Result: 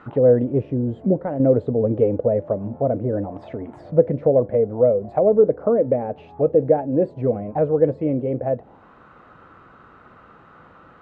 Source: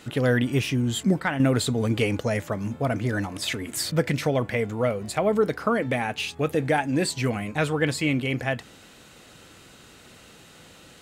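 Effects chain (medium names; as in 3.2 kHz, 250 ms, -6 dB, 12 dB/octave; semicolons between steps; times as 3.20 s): touch-sensitive low-pass 540–1300 Hz down, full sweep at -23 dBFS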